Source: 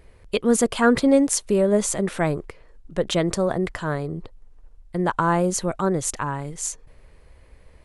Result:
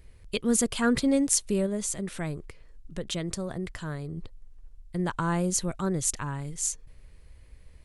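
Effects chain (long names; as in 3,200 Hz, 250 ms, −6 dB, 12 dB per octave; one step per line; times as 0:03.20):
parametric band 730 Hz −11 dB 3 octaves
0:01.66–0:04.17: downward compressor 1.5 to 1, threshold −36 dBFS, peak gain reduction 5.5 dB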